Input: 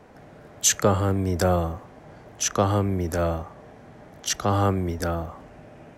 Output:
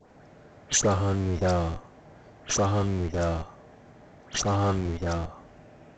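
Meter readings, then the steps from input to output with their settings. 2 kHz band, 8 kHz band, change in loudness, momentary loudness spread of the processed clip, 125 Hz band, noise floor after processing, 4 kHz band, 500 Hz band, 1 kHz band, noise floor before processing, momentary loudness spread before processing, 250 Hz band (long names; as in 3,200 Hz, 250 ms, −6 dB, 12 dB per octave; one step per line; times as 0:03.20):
−2.5 dB, −4.0 dB, −3.0 dB, 11 LU, −2.0 dB, −53 dBFS, −3.0 dB, −3.5 dB, −4.0 dB, −48 dBFS, 11 LU, −3.0 dB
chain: all-pass dispersion highs, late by 100 ms, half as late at 1,900 Hz
in parallel at −5 dB: comparator with hysteresis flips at −27 dBFS
on the sum: level −5 dB
A-law companding 128 kbit/s 16,000 Hz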